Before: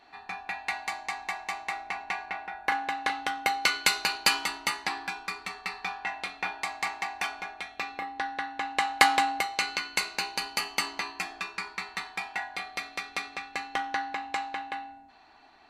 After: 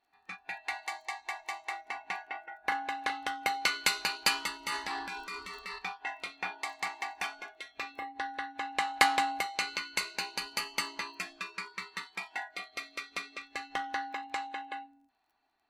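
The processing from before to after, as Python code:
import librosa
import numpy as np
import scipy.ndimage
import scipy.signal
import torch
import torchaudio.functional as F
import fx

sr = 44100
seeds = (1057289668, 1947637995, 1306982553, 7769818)

y = fx.dmg_crackle(x, sr, seeds[0], per_s=18.0, level_db=-42.0)
y = fx.transient(y, sr, attack_db=-5, sustain_db=8, at=(4.57, 5.79))
y = fx.noise_reduce_blind(y, sr, reduce_db=17)
y = y * librosa.db_to_amplitude(-4.0)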